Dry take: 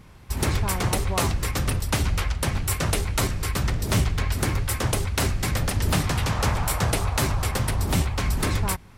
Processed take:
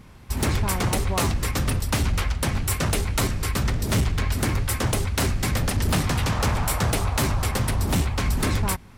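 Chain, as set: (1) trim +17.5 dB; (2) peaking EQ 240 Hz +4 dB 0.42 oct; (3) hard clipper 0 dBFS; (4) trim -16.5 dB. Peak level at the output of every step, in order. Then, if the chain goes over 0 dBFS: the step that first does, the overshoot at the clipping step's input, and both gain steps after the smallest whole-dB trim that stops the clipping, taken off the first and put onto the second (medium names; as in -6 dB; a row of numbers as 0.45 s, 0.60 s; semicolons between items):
+7.0 dBFS, +7.0 dBFS, 0.0 dBFS, -16.5 dBFS; step 1, 7.0 dB; step 1 +10.5 dB, step 4 -9.5 dB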